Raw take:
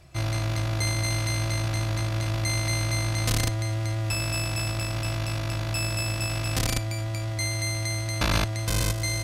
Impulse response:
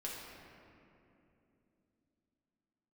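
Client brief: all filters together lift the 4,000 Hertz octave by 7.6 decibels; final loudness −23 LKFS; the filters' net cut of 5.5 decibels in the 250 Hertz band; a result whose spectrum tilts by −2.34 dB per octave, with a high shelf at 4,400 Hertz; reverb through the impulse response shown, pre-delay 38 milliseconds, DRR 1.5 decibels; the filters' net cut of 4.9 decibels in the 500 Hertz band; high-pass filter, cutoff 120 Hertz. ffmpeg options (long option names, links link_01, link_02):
-filter_complex "[0:a]highpass=120,equalizer=frequency=250:width_type=o:gain=-5.5,equalizer=frequency=500:width_type=o:gain=-6,equalizer=frequency=4000:width_type=o:gain=7,highshelf=frequency=4400:gain=3.5,asplit=2[link_01][link_02];[1:a]atrim=start_sample=2205,adelay=38[link_03];[link_02][link_03]afir=irnorm=-1:irlink=0,volume=-1.5dB[link_04];[link_01][link_04]amix=inputs=2:normalize=0"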